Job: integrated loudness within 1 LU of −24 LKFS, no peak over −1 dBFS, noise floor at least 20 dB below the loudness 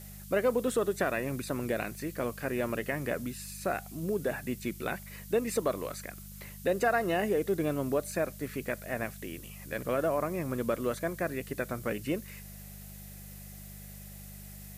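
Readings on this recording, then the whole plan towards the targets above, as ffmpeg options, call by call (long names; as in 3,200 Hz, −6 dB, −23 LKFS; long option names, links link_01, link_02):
mains hum 50 Hz; hum harmonics up to 200 Hz; level of the hum −45 dBFS; background noise floor −47 dBFS; target noise floor −53 dBFS; integrated loudness −32.5 LKFS; sample peak −16.0 dBFS; target loudness −24.0 LKFS
→ -af "bandreject=frequency=50:width_type=h:width=4,bandreject=frequency=100:width_type=h:width=4,bandreject=frequency=150:width_type=h:width=4,bandreject=frequency=200:width_type=h:width=4"
-af "afftdn=noise_reduction=6:noise_floor=-47"
-af "volume=8.5dB"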